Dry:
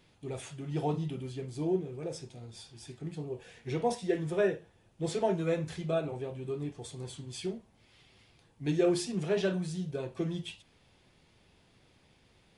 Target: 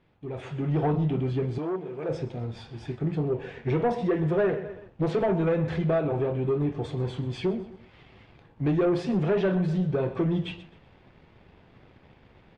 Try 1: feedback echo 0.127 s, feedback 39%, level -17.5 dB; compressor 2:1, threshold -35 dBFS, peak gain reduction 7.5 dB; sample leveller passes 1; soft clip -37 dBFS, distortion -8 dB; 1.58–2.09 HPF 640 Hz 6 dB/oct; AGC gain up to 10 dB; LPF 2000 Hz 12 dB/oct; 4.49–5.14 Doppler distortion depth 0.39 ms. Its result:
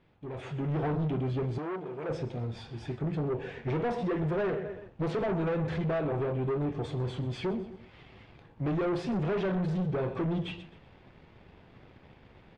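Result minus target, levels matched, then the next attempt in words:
soft clip: distortion +10 dB
feedback echo 0.127 s, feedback 39%, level -17.5 dB; compressor 2:1, threshold -35 dBFS, peak gain reduction 7.5 dB; sample leveller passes 1; soft clip -27.5 dBFS, distortion -18 dB; 1.58–2.09 HPF 640 Hz 6 dB/oct; AGC gain up to 10 dB; LPF 2000 Hz 12 dB/oct; 4.49–5.14 Doppler distortion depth 0.39 ms

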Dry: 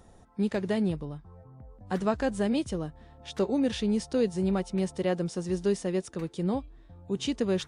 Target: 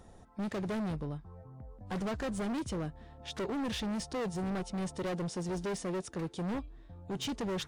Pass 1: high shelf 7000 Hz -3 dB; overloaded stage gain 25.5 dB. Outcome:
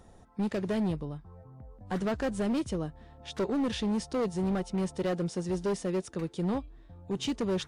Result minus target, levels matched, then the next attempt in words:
overloaded stage: distortion -6 dB
high shelf 7000 Hz -3 dB; overloaded stage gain 32.5 dB

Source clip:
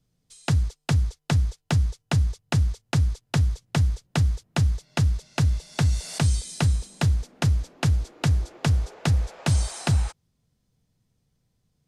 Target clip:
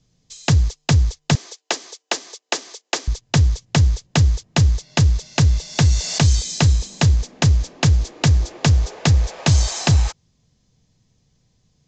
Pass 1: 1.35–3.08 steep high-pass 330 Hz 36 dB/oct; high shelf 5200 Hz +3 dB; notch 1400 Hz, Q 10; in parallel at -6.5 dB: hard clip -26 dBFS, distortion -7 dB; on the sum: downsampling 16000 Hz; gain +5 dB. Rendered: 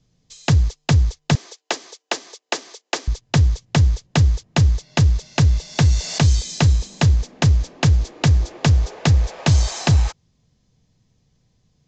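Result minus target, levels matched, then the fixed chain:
8000 Hz band -3.5 dB
1.35–3.08 steep high-pass 330 Hz 36 dB/oct; high shelf 5200 Hz +9.5 dB; notch 1400 Hz, Q 10; in parallel at -6.5 dB: hard clip -26 dBFS, distortion -7 dB; on the sum: downsampling 16000 Hz; gain +5 dB

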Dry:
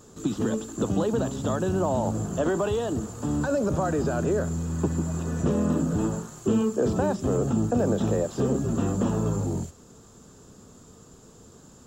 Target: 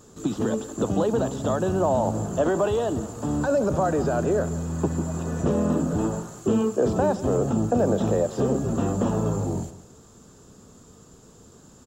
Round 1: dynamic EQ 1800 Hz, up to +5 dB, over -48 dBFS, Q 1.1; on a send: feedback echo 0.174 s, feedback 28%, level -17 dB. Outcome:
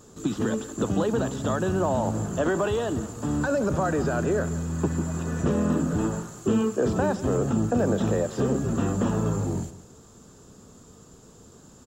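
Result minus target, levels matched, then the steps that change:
2000 Hz band +5.0 dB
change: dynamic EQ 680 Hz, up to +5 dB, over -48 dBFS, Q 1.1

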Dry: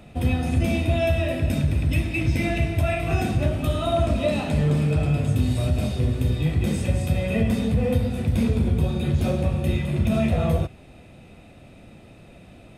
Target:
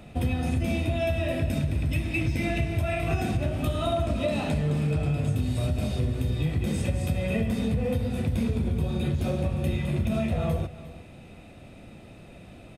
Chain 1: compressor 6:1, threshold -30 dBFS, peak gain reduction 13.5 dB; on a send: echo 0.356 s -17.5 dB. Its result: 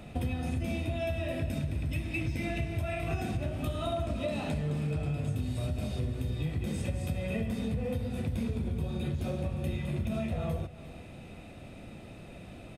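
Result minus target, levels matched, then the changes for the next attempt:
compressor: peak gain reduction +6 dB
change: compressor 6:1, threshold -22.5 dBFS, peak gain reduction 7.5 dB

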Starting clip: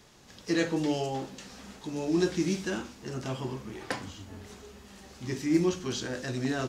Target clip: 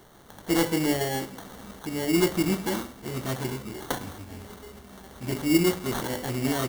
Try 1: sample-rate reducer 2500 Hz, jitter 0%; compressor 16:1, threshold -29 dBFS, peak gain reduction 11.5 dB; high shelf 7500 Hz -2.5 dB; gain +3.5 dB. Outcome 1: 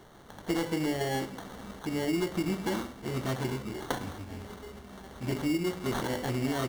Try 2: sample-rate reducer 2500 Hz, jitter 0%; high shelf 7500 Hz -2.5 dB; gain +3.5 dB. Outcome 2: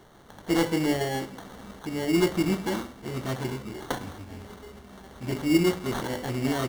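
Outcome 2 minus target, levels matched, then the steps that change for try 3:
8000 Hz band -4.5 dB
change: high shelf 7500 Hz +7 dB

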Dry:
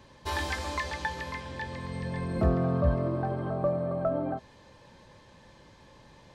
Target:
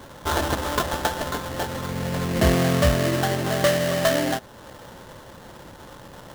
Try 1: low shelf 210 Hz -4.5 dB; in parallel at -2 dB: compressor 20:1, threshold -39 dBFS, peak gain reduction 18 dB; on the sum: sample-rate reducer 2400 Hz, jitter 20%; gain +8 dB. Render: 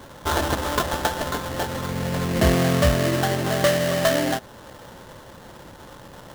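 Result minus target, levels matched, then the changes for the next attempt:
compressor: peak gain reduction -5.5 dB
change: compressor 20:1, threshold -45 dBFS, peak gain reduction 24 dB

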